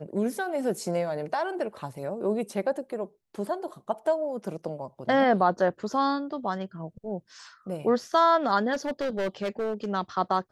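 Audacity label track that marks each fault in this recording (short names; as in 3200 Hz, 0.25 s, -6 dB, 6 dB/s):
8.730000	9.910000	clipped -25 dBFS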